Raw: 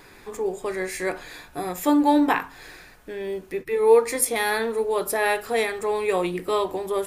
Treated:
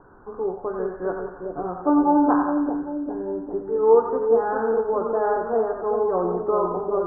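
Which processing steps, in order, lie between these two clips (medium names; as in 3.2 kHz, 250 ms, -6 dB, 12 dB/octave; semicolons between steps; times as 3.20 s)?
steep low-pass 1.5 kHz 96 dB/octave; on a send: two-band feedback delay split 650 Hz, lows 400 ms, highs 89 ms, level -4 dB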